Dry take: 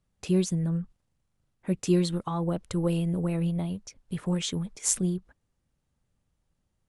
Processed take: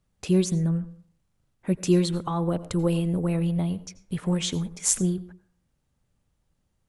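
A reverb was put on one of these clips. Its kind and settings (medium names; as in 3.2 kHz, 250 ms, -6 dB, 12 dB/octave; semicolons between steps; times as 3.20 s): plate-style reverb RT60 0.51 s, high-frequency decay 0.45×, pre-delay 75 ms, DRR 16.5 dB; trim +3 dB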